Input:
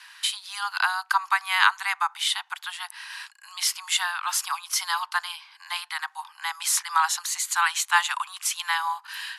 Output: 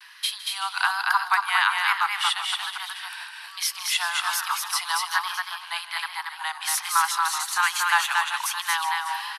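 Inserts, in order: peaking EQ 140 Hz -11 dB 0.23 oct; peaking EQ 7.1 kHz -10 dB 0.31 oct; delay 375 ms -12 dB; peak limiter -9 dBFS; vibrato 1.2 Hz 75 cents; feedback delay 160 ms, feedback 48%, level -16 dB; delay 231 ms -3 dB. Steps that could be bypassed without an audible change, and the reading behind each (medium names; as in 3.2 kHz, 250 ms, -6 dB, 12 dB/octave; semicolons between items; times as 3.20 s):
peaking EQ 140 Hz: input has nothing below 640 Hz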